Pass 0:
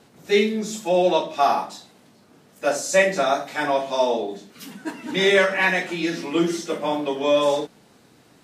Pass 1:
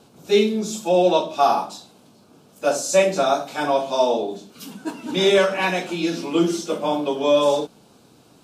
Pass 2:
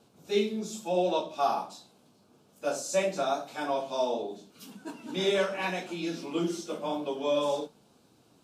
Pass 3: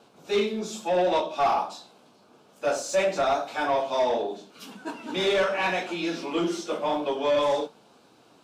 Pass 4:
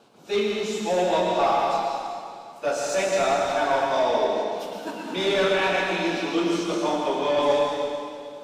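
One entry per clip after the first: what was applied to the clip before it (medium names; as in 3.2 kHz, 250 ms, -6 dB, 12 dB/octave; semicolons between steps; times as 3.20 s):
peaking EQ 1.9 kHz -15 dB 0.35 oct; trim +2 dB
flange 0.85 Hz, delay 8.4 ms, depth 9.1 ms, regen -51%; trim -6 dB
overdrive pedal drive 17 dB, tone 2.4 kHz, clips at -14 dBFS
plate-style reverb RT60 2.3 s, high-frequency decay 0.95×, pre-delay 100 ms, DRR -0.5 dB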